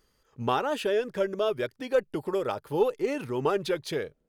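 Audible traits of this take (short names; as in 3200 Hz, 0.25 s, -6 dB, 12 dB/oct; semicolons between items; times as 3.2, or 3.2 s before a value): noise floor -72 dBFS; spectral tilt -4.0 dB/oct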